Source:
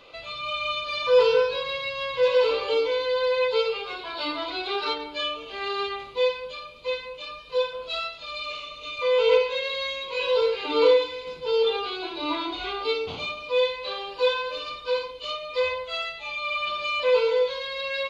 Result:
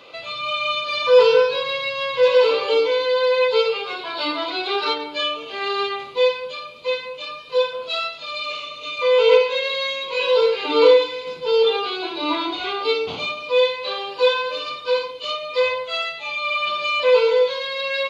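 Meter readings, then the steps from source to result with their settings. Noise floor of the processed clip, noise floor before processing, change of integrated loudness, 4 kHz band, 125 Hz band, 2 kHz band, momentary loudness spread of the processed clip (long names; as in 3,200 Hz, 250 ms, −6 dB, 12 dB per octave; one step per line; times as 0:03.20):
−36 dBFS, −42 dBFS, +5.5 dB, +5.5 dB, can't be measured, +5.5 dB, 11 LU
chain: high-pass filter 130 Hz 12 dB per octave
level +5.5 dB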